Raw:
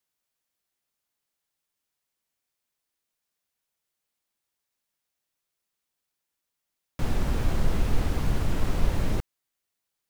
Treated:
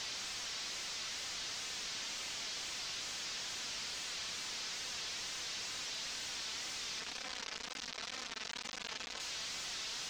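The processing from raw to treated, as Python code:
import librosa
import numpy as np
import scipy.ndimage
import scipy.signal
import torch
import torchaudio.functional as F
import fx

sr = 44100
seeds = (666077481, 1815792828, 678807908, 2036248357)

y = np.sign(x) * np.sqrt(np.mean(np.square(x)))
y = fx.bandpass_q(y, sr, hz=6400.0, q=1.4)
y = y + 0.82 * np.pad(y, (int(4.2 * sr / 1000.0), 0))[:len(y)]
y = fx.wow_flutter(y, sr, seeds[0], rate_hz=2.1, depth_cents=150.0)
y = 10.0 ** (-33.5 / 20.0) * np.tanh(y / 10.0 ** (-33.5 / 20.0))
y = fx.air_absorb(y, sr, metres=190.0)
y = y + 10.0 ** (-11.5 / 20.0) * np.pad(y, (int(237 * sr / 1000.0), 0))[:len(y)]
y = fx.env_flatten(y, sr, amount_pct=70)
y = y * 10.0 ** (4.0 / 20.0)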